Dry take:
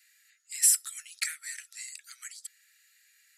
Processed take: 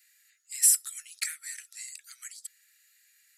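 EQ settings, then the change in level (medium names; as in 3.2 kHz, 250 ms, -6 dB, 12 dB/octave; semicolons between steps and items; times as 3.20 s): treble shelf 7.7 kHz +7 dB; -3.0 dB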